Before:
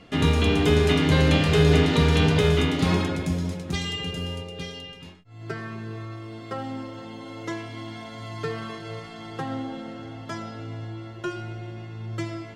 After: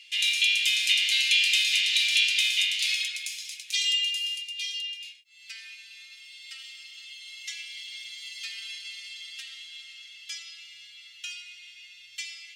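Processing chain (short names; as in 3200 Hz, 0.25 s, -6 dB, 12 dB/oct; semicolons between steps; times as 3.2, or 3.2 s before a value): elliptic high-pass 2400 Hz, stop band 60 dB; gain +8.5 dB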